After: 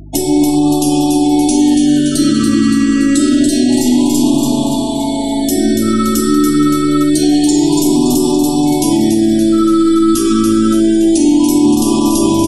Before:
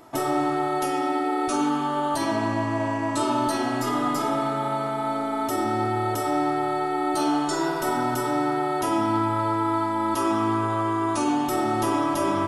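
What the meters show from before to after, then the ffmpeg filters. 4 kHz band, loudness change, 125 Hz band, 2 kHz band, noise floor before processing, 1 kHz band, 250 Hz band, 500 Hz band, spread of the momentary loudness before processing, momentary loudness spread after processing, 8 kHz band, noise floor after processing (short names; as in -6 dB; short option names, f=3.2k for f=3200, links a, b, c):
+15.0 dB, +13.0 dB, +10.0 dB, +3.5 dB, -27 dBFS, +1.0 dB, +17.0 dB, +9.5 dB, 2 LU, 3 LU, +18.0 dB, -16 dBFS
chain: -filter_complex "[0:a]equalizer=f=125:t=o:w=1:g=-12,equalizer=f=500:t=o:w=1:g=-11,equalizer=f=1k:t=o:w=1:g=-8,equalizer=f=2k:t=o:w=1:g=-10,equalizer=f=4k:t=o:w=1:g=3,equalizer=f=8k:t=o:w=1:g=7,afftfilt=real='re*gte(hypot(re,im),0.00562)':imag='im*gte(hypot(re,im),0.00562)':win_size=1024:overlap=0.75,adynamicequalizer=threshold=0.00447:dfrequency=230:dqfactor=1.3:tfrequency=230:tqfactor=1.3:attack=5:release=100:ratio=0.375:range=2:mode=boostabove:tftype=bell,acrossover=split=400[a][b];[b]acompressor=threshold=-38dB:ratio=6[c];[a][c]amix=inputs=2:normalize=0,aeval=exprs='val(0)+0.00316*(sin(2*PI*50*n/s)+sin(2*PI*2*50*n/s)/2+sin(2*PI*3*50*n/s)/3+sin(2*PI*4*50*n/s)/4+sin(2*PI*5*50*n/s)/5)':c=same,asplit=2[d][e];[e]adelay=13,volume=-7dB[f];[d][f]amix=inputs=2:normalize=0,asplit=2[g][h];[h]aecho=0:1:285|570|855|1140|1425|1710|1995|2280:0.596|0.34|0.194|0.11|0.0629|0.0358|0.0204|0.0116[i];[g][i]amix=inputs=2:normalize=0,alimiter=level_in=21dB:limit=-1dB:release=50:level=0:latency=1,afftfilt=real='re*(1-between(b*sr/1024,770*pow(1700/770,0.5+0.5*sin(2*PI*0.27*pts/sr))/1.41,770*pow(1700/770,0.5+0.5*sin(2*PI*0.27*pts/sr))*1.41))':imag='im*(1-between(b*sr/1024,770*pow(1700/770,0.5+0.5*sin(2*PI*0.27*pts/sr))/1.41,770*pow(1700/770,0.5+0.5*sin(2*PI*0.27*pts/sr))*1.41))':win_size=1024:overlap=0.75,volume=-1.5dB"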